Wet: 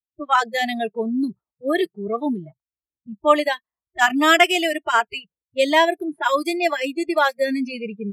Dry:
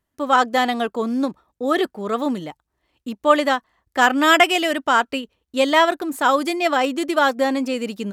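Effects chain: low-pass opened by the level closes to 360 Hz, open at -16.5 dBFS; spectral noise reduction 30 dB

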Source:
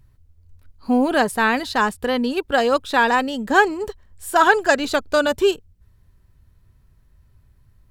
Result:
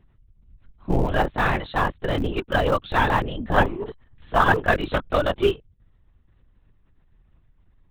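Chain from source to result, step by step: notch 1500 Hz, Q 28; LPC vocoder at 8 kHz whisper; in parallel at -11 dB: Schmitt trigger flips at -15.5 dBFS; on the sum: gain -3.5 dB

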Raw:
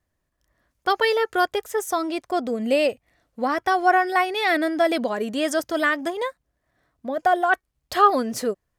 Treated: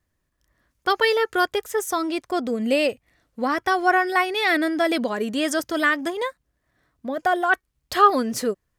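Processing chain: bell 680 Hz -5 dB 0.79 oct; gain +2 dB

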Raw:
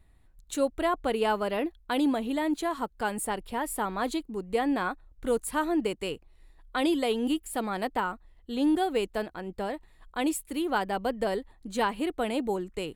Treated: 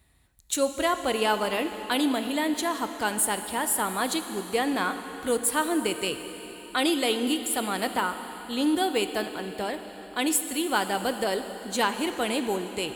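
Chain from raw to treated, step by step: HPF 50 Hz 24 dB/oct; high shelf 2100 Hz +11 dB; plate-style reverb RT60 4 s, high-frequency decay 1×, DRR 8 dB

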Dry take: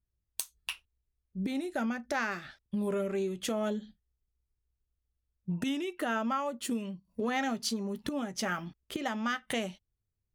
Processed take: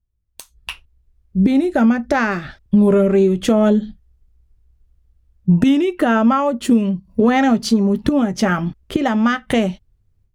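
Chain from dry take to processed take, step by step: AGC gain up to 16.5 dB; tilt -2.5 dB/oct; gain -1.5 dB

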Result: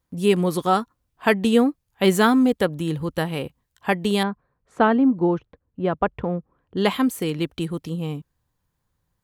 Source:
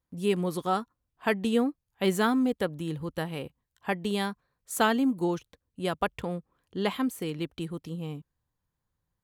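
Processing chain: 4.23–6.77 Bessel low-pass 1200 Hz, order 2; gain +8 dB

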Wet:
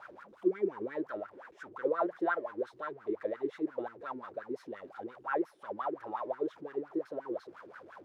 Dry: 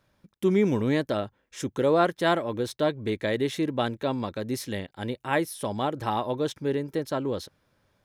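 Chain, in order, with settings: zero-crossing step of -31 dBFS; wah 5.7 Hz 330–1500 Hz, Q 9.2; dynamic EQ 1800 Hz, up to +5 dB, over -53 dBFS, Q 1.8

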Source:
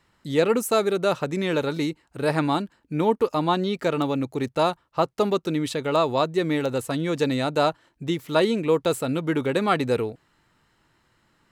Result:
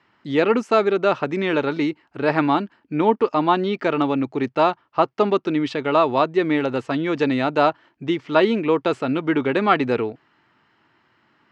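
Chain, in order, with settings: speaker cabinet 160–4500 Hz, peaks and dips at 170 Hz -6 dB, 510 Hz -6 dB, 3900 Hz -8 dB; gain +5.5 dB

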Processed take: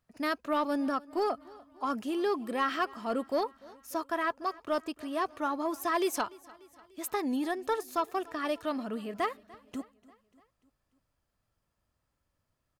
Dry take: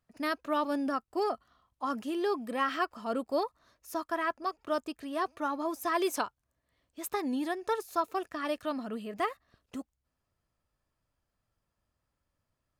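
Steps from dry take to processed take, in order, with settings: soft clip -20.5 dBFS, distortion -22 dB; on a send: feedback echo 0.294 s, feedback 58%, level -22.5 dB; on the sum: gain +1.5 dB

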